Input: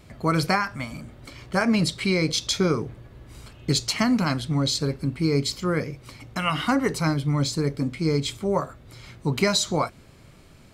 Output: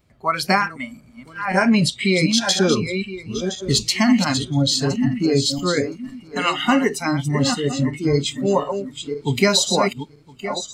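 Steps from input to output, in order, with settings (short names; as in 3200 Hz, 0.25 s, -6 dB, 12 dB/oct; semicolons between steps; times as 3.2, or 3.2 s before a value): regenerating reverse delay 0.508 s, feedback 57%, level -6 dB; spectral noise reduction 18 dB; gain +5.5 dB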